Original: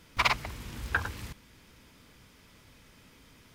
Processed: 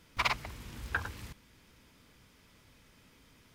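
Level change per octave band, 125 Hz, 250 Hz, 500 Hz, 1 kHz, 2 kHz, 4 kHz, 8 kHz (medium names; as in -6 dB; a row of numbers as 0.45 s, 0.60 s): -4.5 dB, -4.5 dB, -4.5 dB, -4.5 dB, -4.5 dB, -4.5 dB, -4.5 dB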